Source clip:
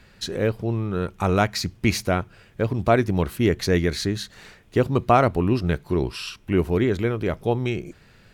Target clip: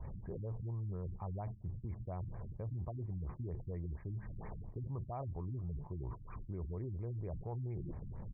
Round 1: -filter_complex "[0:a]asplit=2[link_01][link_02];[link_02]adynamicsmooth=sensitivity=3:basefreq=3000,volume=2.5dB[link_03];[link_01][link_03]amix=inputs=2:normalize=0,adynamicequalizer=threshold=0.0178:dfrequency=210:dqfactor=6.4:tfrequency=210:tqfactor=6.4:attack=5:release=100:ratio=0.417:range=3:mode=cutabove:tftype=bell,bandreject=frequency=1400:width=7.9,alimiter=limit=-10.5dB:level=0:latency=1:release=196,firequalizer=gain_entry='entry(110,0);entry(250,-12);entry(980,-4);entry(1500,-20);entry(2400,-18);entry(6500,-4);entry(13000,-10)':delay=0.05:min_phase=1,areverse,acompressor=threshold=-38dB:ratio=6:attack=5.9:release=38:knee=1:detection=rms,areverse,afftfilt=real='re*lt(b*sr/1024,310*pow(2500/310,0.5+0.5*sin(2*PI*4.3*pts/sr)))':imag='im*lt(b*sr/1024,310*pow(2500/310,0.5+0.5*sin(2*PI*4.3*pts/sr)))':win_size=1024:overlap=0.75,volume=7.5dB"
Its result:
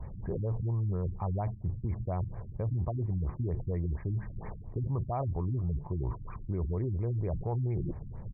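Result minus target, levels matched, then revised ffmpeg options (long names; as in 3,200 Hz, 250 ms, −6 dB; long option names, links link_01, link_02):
downward compressor: peak gain reduction −9.5 dB
-filter_complex "[0:a]asplit=2[link_01][link_02];[link_02]adynamicsmooth=sensitivity=3:basefreq=3000,volume=2.5dB[link_03];[link_01][link_03]amix=inputs=2:normalize=0,adynamicequalizer=threshold=0.0178:dfrequency=210:dqfactor=6.4:tfrequency=210:tqfactor=6.4:attack=5:release=100:ratio=0.417:range=3:mode=cutabove:tftype=bell,bandreject=frequency=1400:width=7.9,alimiter=limit=-10.5dB:level=0:latency=1:release=196,firequalizer=gain_entry='entry(110,0);entry(250,-12);entry(980,-4);entry(1500,-20);entry(2400,-18);entry(6500,-4);entry(13000,-10)':delay=0.05:min_phase=1,areverse,acompressor=threshold=-49.5dB:ratio=6:attack=5.9:release=38:knee=1:detection=rms,areverse,afftfilt=real='re*lt(b*sr/1024,310*pow(2500/310,0.5+0.5*sin(2*PI*4.3*pts/sr)))':imag='im*lt(b*sr/1024,310*pow(2500/310,0.5+0.5*sin(2*PI*4.3*pts/sr)))':win_size=1024:overlap=0.75,volume=7.5dB"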